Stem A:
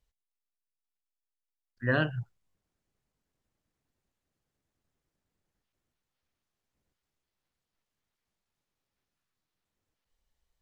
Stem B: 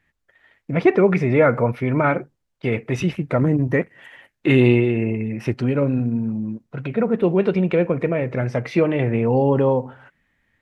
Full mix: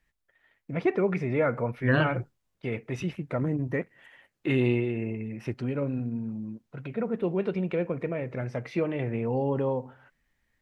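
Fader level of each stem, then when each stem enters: +1.5, −10.0 decibels; 0.00, 0.00 seconds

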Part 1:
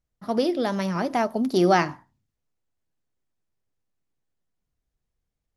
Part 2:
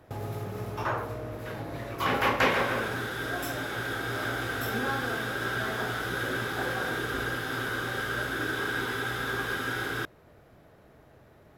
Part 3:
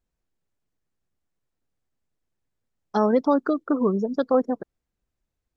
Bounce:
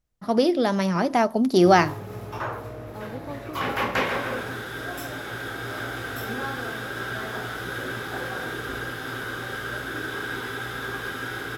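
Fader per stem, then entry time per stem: +3.0, −0.5, −18.0 decibels; 0.00, 1.55, 0.00 seconds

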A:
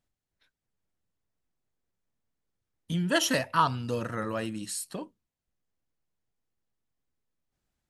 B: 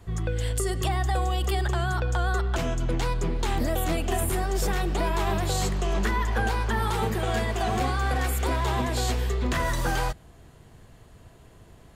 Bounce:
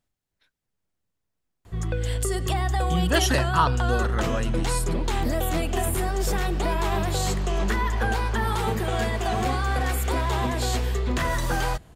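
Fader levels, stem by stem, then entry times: +2.5, +1.0 decibels; 0.00, 1.65 seconds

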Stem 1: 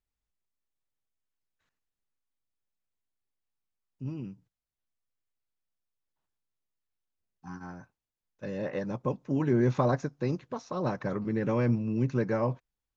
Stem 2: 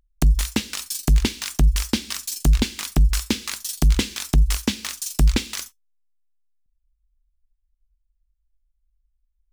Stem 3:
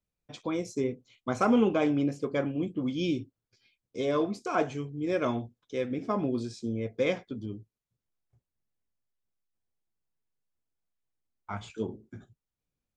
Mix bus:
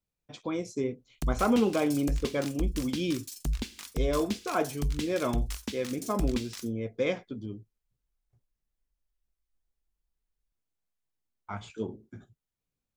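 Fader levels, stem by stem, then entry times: muted, −14.0 dB, −1.0 dB; muted, 1.00 s, 0.00 s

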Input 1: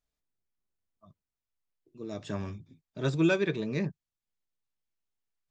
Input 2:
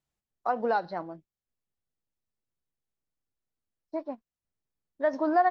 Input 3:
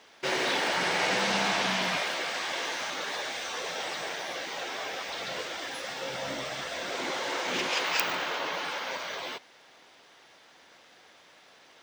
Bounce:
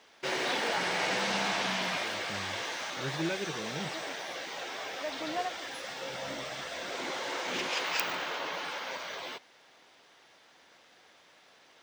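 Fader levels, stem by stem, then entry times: −9.0, −12.0, −3.5 decibels; 0.00, 0.00, 0.00 seconds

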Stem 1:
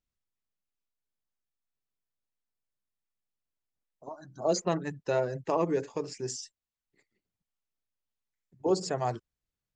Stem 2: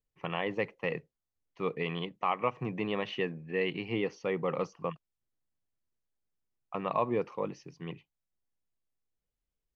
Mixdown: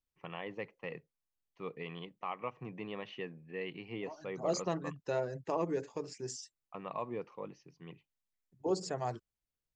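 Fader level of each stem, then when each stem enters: −6.0, −9.5 decibels; 0.00, 0.00 seconds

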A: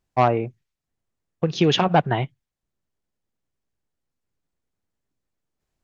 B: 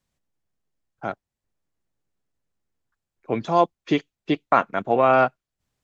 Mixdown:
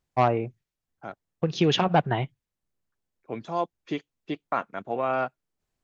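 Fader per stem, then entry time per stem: −3.5, −9.5 decibels; 0.00, 0.00 seconds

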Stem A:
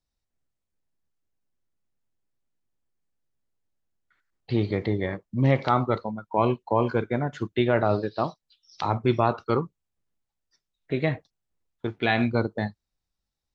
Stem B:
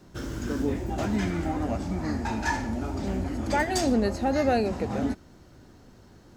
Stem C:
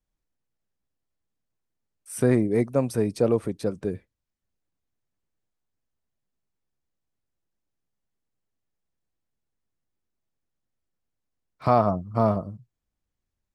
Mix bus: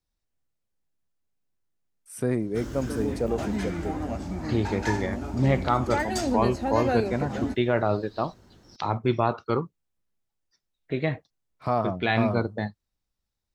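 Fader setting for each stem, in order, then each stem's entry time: −1.5, −2.5, −5.5 decibels; 0.00, 2.40, 0.00 seconds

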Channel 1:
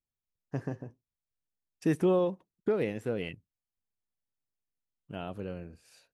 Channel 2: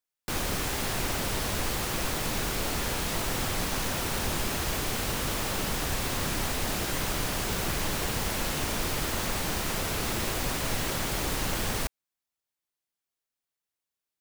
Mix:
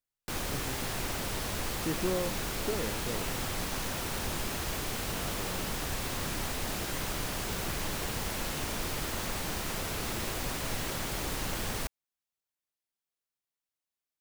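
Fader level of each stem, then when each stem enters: −6.5, −4.5 decibels; 0.00, 0.00 seconds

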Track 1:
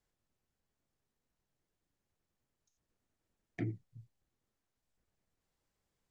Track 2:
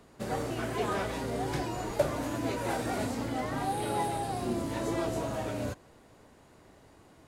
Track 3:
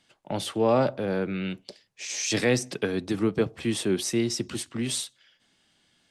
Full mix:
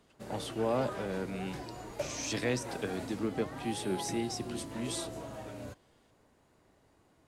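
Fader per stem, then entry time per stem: −5.0, −9.5, −9.0 decibels; 0.50, 0.00, 0.00 seconds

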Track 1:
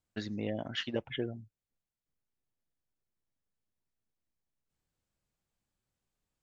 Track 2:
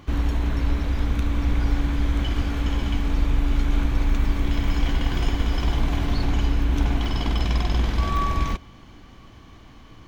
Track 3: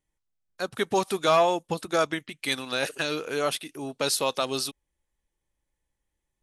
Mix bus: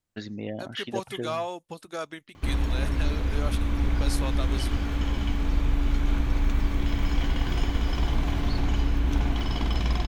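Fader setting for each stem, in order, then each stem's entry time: +1.5, −3.0, −10.0 decibels; 0.00, 2.35, 0.00 seconds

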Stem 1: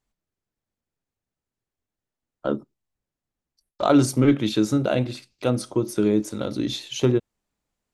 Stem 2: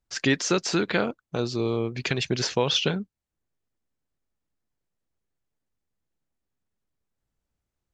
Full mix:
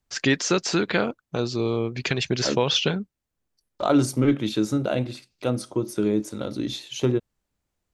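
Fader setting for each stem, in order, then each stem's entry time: −2.5, +1.5 decibels; 0.00, 0.00 seconds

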